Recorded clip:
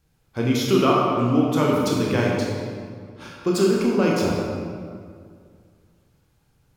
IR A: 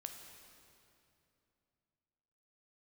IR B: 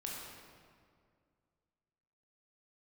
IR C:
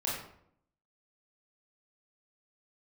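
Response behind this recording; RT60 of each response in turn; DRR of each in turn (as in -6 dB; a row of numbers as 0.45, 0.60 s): B; 2.8, 2.1, 0.70 s; 4.0, -3.5, -6.0 dB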